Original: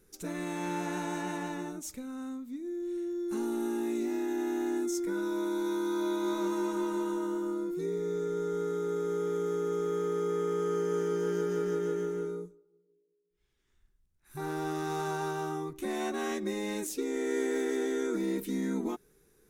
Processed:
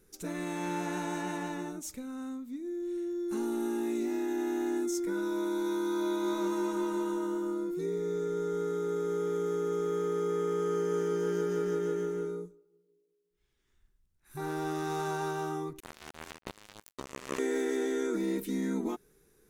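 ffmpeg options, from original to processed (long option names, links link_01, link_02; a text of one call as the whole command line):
ffmpeg -i in.wav -filter_complex "[0:a]asettb=1/sr,asplit=3[link_01][link_02][link_03];[link_01]atrim=end=15.804[link_04];[link_02]atrim=start=15.8:end=17.39,asetpts=PTS-STARTPTS,afade=type=in:duration=0.004:curve=qsin,afade=type=out:start_time=1.586:duration=0.004:curve=qsin,acrusher=bits=3:mix=0:aa=0.5[link_05];[link_03]atrim=start=17.386[link_06];[link_04][link_05]acrossfade=duration=0.004:curve1=hsin:curve2=qsin[link_07];[link_07][link_06]acrossfade=duration=0.004:curve1=qsin:curve2=hsin" out.wav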